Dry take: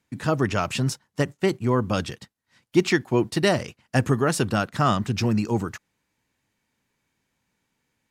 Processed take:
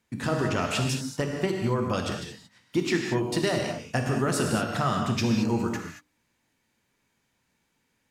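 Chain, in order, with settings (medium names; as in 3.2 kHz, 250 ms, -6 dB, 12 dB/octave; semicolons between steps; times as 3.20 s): compression, threshold -23 dBFS, peak gain reduction 10.5 dB; hum notches 50/100/150/200/250/300 Hz; gated-style reverb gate 250 ms flat, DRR 1.5 dB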